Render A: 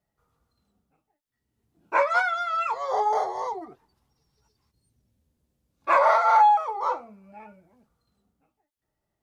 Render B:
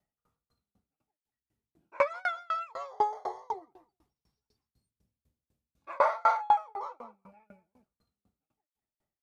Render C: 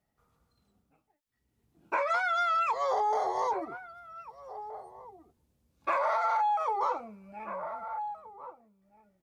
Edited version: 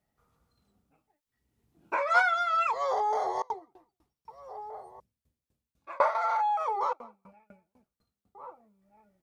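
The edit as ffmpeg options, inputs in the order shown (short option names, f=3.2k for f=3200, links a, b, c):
-filter_complex "[1:a]asplit=3[a][b][c];[2:a]asplit=5[d][e][f][g][h];[d]atrim=end=2.092[i];[0:a]atrim=start=2.088:end=2.672[j];[e]atrim=start=2.668:end=3.422[k];[a]atrim=start=3.418:end=4.282[l];[f]atrim=start=4.278:end=5.002[m];[b]atrim=start=4.998:end=6.152[n];[g]atrim=start=6.148:end=6.932[o];[c]atrim=start=6.928:end=8.352[p];[h]atrim=start=8.348[q];[i][j]acrossfade=d=0.004:c1=hsin:c2=hsin[r];[r][k]acrossfade=d=0.004:c1=hsin:c2=hsin[s];[s][l]acrossfade=d=0.004:c1=hsin:c2=hsin[t];[t][m]acrossfade=d=0.004:c1=hsin:c2=hsin[u];[u][n]acrossfade=d=0.004:c1=hsin:c2=hsin[v];[v][o]acrossfade=d=0.004:c1=hsin:c2=hsin[w];[w][p]acrossfade=d=0.004:c1=hsin:c2=hsin[x];[x][q]acrossfade=d=0.004:c1=hsin:c2=hsin"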